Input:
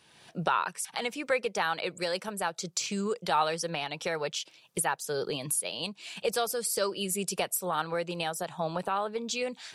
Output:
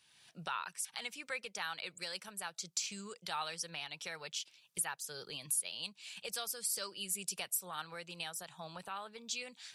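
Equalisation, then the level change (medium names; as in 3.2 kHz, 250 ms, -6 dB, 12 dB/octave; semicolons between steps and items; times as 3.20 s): amplifier tone stack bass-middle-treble 5-5-5; +1.5 dB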